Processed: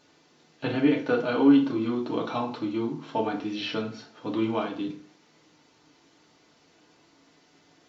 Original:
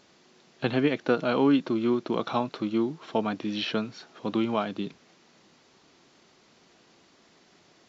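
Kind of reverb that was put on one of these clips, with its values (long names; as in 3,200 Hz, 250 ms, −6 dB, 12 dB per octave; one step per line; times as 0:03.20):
feedback delay network reverb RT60 0.48 s, low-frequency decay 1.05×, high-frequency decay 0.75×, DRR −1.5 dB
level −5 dB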